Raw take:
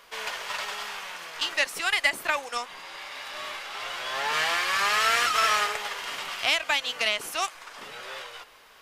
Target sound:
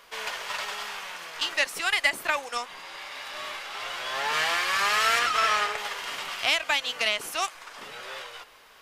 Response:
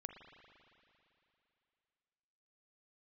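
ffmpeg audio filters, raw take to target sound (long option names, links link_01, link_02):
-filter_complex "[0:a]asettb=1/sr,asplit=3[link_01][link_02][link_03];[link_01]atrim=end=5.194[link_04];[link_02]atrim=start=5.19:end=5.78,asetpts=PTS-STARTPTS,afade=type=in:duration=0.004:curve=qsin,afade=type=out:start_time=0.586:duration=0.004:curve=qsin,highshelf=frequency=7200:gain=-9.5[link_05];[link_03]atrim=start=5.776[link_06];[link_04][link_05]acrossfade=duration=0.004:curve1=hsin:curve2=qsin[link_07];[link_07][link_06]acrossfade=duration=0.004:curve1=qsin:curve2=hsin"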